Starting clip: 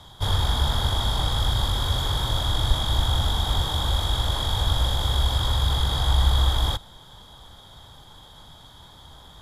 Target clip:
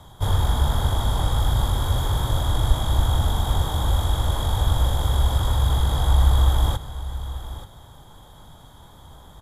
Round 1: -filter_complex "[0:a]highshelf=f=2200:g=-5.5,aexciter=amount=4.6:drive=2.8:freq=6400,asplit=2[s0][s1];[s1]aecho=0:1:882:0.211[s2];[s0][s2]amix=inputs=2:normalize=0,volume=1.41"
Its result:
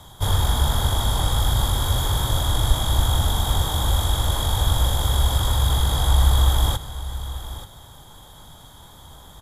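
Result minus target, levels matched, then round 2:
4 kHz band +4.5 dB
-filter_complex "[0:a]highshelf=f=2200:g=-13.5,aexciter=amount=4.6:drive=2.8:freq=6400,asplit=2[s0][s1];[s1]aecho=0:1:882:0.211[s2];[s0][s2]amix=inputs=2:normalize=0,volume=1.41"

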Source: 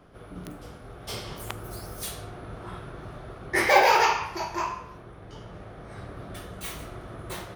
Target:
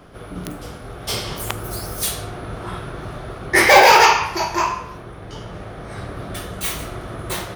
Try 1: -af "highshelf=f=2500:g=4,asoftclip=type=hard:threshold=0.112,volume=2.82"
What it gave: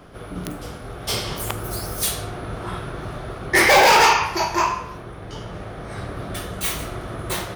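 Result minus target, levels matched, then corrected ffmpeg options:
hard clipper: distortion +8 dB
-af "highshelf=f=2500:g=4,asoftclip=type=hard:threshold=0.224,volume=2.82"

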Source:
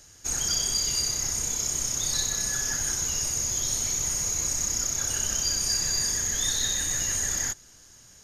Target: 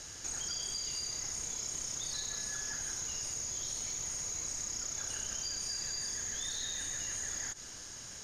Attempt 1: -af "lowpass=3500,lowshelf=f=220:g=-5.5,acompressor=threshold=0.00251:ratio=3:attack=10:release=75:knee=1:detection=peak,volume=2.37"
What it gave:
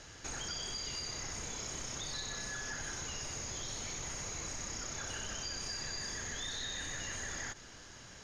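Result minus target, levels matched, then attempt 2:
4 kHz band +2.5 dB
-af "lowpass=8200,lowshelf=f=220:g=-5.5,acompressor=threshold=0.00251:ratio=3:attack=10:release=75:knee=1:detection=peak,volume=2.37"

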